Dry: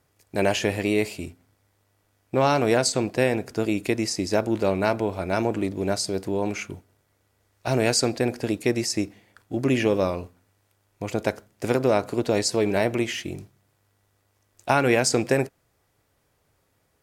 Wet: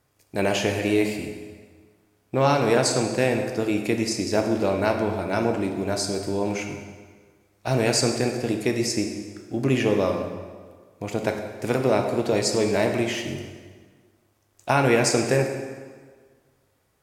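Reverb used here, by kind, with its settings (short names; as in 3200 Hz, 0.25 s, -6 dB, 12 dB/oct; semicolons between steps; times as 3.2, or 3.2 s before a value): plate-style reverb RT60 1.6 s, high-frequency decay 0.8×, DRR 3.5 dB; gain -1 dB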